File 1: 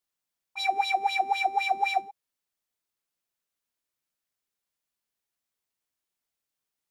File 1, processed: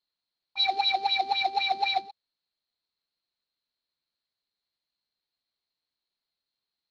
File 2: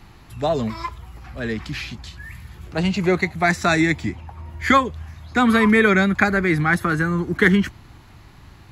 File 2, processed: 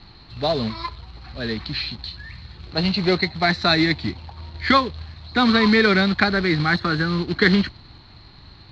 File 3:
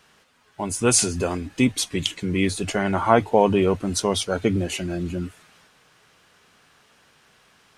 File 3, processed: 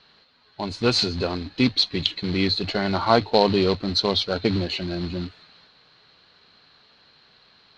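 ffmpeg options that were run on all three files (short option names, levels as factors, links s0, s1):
-af "acrusher=bits=3:mode=log:mix=0:aa=0.000001,lowpass=f=4200:t=q:w=16,aemphasis=mode=reproduction:type=75fm,volume=0.794"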